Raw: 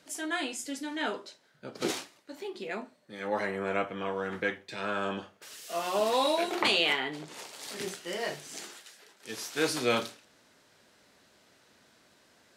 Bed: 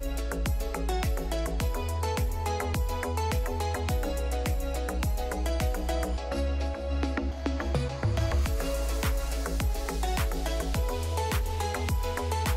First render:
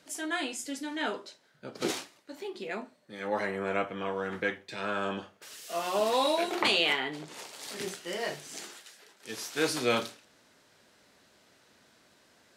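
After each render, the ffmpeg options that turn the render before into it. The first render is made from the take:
-af anull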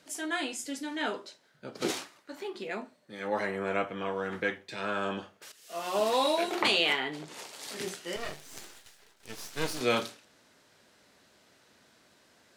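-filter_complex "[0:a]asettb=1/sr,asplit=3[s0][s1][s2];[s0]atrim=end=2.014[s3];[s1]atrim=start=2.01:end=2.63,asetpts=PTS-STARTPTS,afade=t=in:d=0.004:c=qsin,afade=t=out:st=0.616:d=0.004:c=qsin,equalizer=f=1300:t=o:w=1.1:g=6.5[s4];[s2]atrim=start=2.626[s5];[s3][s4]acrossfade=d=0.004:c1=hsin:c2=qsin[s6];[s6][s5]acrossfade=d=0.004:c1=qsin:c2=hsin,asettb=1/sr,asplit=3[s7][s8][s9];[s7]atrim=end=8.164[s10];[s8]atrim=start=8.16:end=9.81,asetpts=PTS-STARTPTS,afade=t=in:d=0.004:c=qsin,afade=t=out:st=1.646:d=0.004:c=qsin,aeval=exprs='max(val(0),0)':c=same[s11];[s9]atrim=start=9.806[s12];[s10][s11]acrossfade=d=0.004:c1=hsin:c2=qsin[s13];[s13][s12]acrossfade=d=0.004:c1=qsin:c2=hsin,asplit=2[s14][s15];[s14]atrim=end=5.52,asetpts=PTS-STARTPTS,afade=t=out:st=5.516:d=0.004:c=hsin:silence=0.158489[s16];[s15]atrim=start=5.52,asetpts=PTS-STARTPTS,afade=t=in:d=0.47:silence=0.158489[s17];[s16][s17]concat=n=2:v=0:a=1"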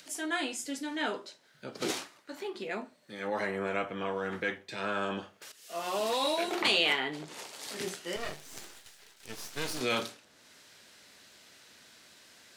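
-filter_complex "[0:a]acrossover=split=1700[s0][s1];[s0]alimiter=limit=0.0631:level=0:latency=1[s2];[s1]acompressor=mode=upward:threshold=0.00398:ratio=2.5[s3];[s2][s3]amix=inputs=2:normalize=0"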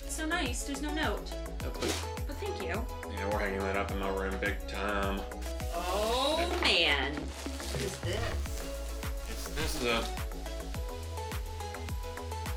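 -filter_complex "[1:a]volume=0.355[s0];[0:a][s0]amix=inputs=2:normalize=0"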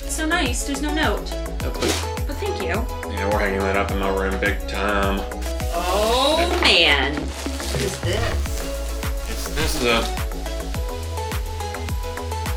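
-af "volume=3.76"

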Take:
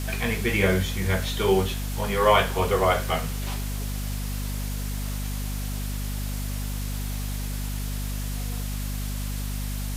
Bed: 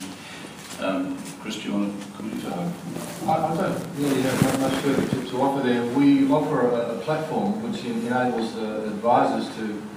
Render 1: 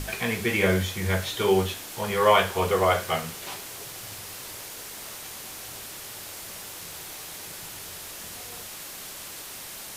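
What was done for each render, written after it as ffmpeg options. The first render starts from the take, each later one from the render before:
-af "bandreject=f=50:t=h:w=6,bandreject=f=100:t=h:w=6,bandreject=f=150:t=h:w=6,bandreject=f=200:t=h:w=6,bandreject=f=250:t=h:w=6"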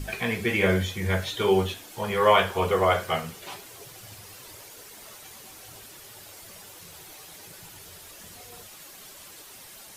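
-af "afftdn=nr=9:nf=-40"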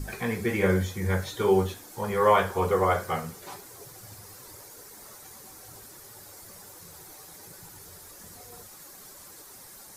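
-af "equalizer=f=2900:t=o:w=0.85:g=-12,bandreject=f=650:w=12"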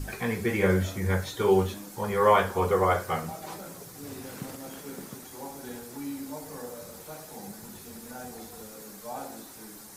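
-filter_complex "[1:a]volume=0.106[s0];[0:a][s0]amix=inputs=2:normalize=0"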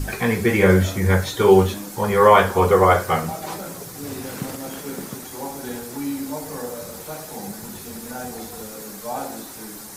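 -af "volume=2.82,alimiter=limit=0.794:level=0:latency=1"

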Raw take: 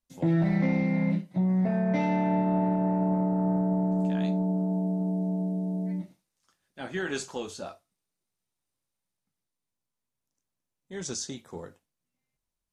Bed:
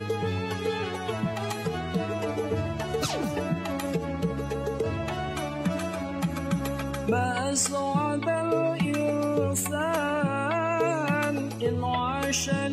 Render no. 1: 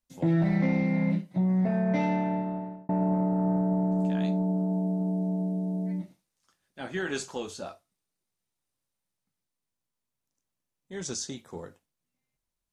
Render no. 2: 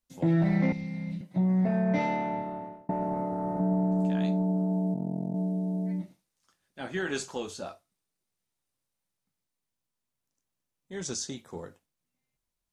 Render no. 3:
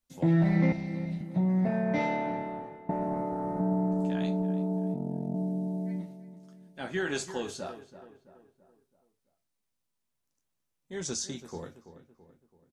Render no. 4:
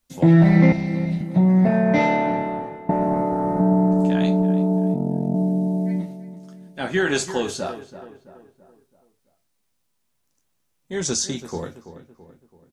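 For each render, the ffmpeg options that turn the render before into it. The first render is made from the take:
-filter_complex "[0:a]asplit=2[s0][s1];[s0]atrim=end=2.89,asetpts=PTS-STARTPTS,afade=t=out:st=2.05:d=0.84[s2];[s1]atrim=start=2.89,asetpts=PTS-STARTPTS,afade=t=in:d=0.004:c=hsin[s3];[s2][s3]concat=n=2:v=0:a=1"
-filter_complex "[0:a]asettb=1/sr,asplit=3[s0][s1][s2];[s0]atrim=end=0.724[s3];[s1]atrim=start=0.72:end=1.21,asetpts=PTS-STARTPTS,afade=t=in:d=0.004:c=qsin,afade=t=out:st=0.486:d=0.004:c=qsin,acrossover=split=140|3000[s4][s5][s6];[s5]acompressor=threshold=0.00708:ratio=5:attack=3.2:release=140:knee=2.83:detection=peak[s7];[s4][s7][s6]amix=inputs=3:normalize=0[s8];[s2]atrim=start=1.206[s9];[s3][s8]acrossfade=d=0.004:c1=hsin:c2=qsin[s10];[s10][s9]acrossfade=d=0.004:c1=qsin:c2=hsin,asettb=1/sr,asplit=3[s11][s12][s13];[s11]atrim=end=1.964[s14];[s12]atrim=start=1.96:end=3.6,asetpts=PTS-STARTPTS,afade=t=in:d=0.004:c=qsin,afade=t=out:st=1.636:d=0.004:c=qsin,asplit=2[s15][s16];[s16]adelay=19,volume=0.668[s17];[s15][s17]amix=inputs=2:normalize=0,atrim=end_sample=72324[s18];[s13]atrim=start=3.596[s19];[s14][s18]acrossfade=d=0.004:c1=hsin:c2=qsin[s20];[s20][s19]acrossfade=d=0.004:c1=qsin:c2=hsin,asplit=3[s21][s22][s23];[s21]afade=t=out:st=4.93:d=0.02[s24];[s22]tremolo=f=44:d=0.947,afade=t=in:st=4.93:d=0.02,afade=t=out:st=5.34:d=0.02[s25];[s23]afade=t=in:st=5.34:d=0.02[s26];[s24][s25][s26]amix=inputs=3:normalize=0"
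-filter_complex "[0:a]asplit=2[s0][s1];[s1]adelay=13,volume=0.211[s2];[s0][s2]amix=inputs=2:normalize=0,asplit=2[s3][s4];[s4]adelay=332,lowpass=f=1900:p=1,volume=0.237,asplit=2[s5][s6];[s6]adelay=332,lowpass=f=1900:p=1,volume=0.48,asplit=2[s7][s8];[s8]adelay=332,lowpass=f=1900:p=1,volume=0.48,asplit=2[s9][s10];[s10]adelay=332,lowpass=f=1900:p=1,volume=0.48,asplit=2[s11][s12];[s12]adelay=332,lowpass=f=1900:p=1,volume=0.48[s13];[s3][s5][s7][s9][s11][s13]amix=inputs=6:normalize=0"
-af "volume=3.35"

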